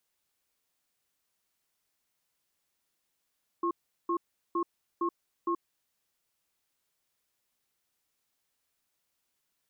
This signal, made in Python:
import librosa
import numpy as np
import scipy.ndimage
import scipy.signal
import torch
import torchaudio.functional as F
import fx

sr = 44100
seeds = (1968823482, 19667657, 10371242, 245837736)

y = fx.cadence(sr, length_s=1.99, low_hz=342.0, high_hz=1080.0, on_s=0.08, off_s=0.38, level_db=-29.0)